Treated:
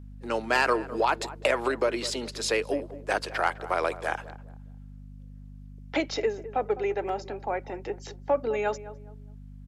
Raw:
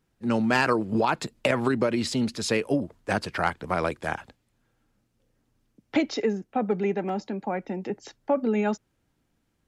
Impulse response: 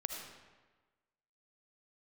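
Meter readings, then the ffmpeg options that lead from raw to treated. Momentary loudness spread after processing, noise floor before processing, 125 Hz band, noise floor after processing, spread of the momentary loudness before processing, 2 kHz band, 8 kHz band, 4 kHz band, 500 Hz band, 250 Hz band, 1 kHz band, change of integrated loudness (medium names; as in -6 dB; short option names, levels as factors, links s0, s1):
22 LU, -74 dBFS, -8.0 dB, -45 dBFS, 9 LU, 0.0 dB, +0.5 dB, 0.0 dB, -0.5 dB, -9.5 dB, 0.0 dB, -2.0 dB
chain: -filter_complex "[0:a]highpass=f=360:w=0.5412,highpass=f=360:w=1.3066,acontrast=80,aeval=exprs='val(0)+0.0158*(sin(2*PI*50*n/s)+sin(2*PI*2*50*n/s)/2+sin(2*PI*3*50*n/s)/3+sin(2*PI*4*50*n/s)/4+sin(2*PI*5*50*n/s)/5)':c=same,asplit=2[s0][s1];[s1]adelay=207,lowpass=f=990:p=1,volume=0.211,asplit=2[s2][s3];[s3]adelay=207,lowpass=f=990:p=1,volume=0.34,asplit=2[s4][s5];[s5]adelay=207,lowpass=f=990:p=1,volume=0.34[s6];[s2][s4][s6]amix=inputs=3:normalize=0[s7];[s0][s7]amix=inputs=2:normalize=0,volume=0.473"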